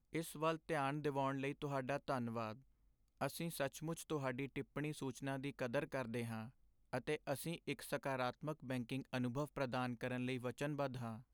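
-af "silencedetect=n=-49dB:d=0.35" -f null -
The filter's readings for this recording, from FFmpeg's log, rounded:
silence_start: 2.54
silence_end: 3.21 | silence_duration: 0.68
silence_start: 6.48
silence_end: 6.93 | silence_duration: 0.45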